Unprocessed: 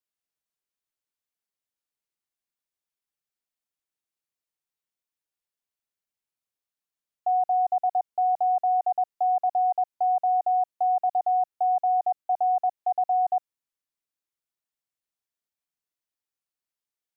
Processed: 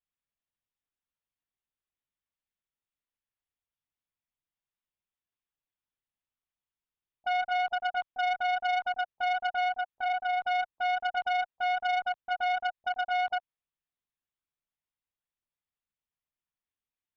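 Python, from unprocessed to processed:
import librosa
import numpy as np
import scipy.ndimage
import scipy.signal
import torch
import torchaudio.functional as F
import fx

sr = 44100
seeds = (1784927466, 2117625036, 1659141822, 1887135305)

y = fx.dynamic_eq(x, sr, hz=570.0, q=1.8, threshold_db=-35.0, ratio=4.0, max_db=-3, at=(9.69, 10.39), fade=0.02)
y = fx.lpc_vocoder(y, sr, seeds[0], excitation='pitch_kept', order=8)
y = fx.transformer_sat(y, sr, knee_hz=1500.0)
y = F.gain(torch.from_numpy(y), -2.0).numpy()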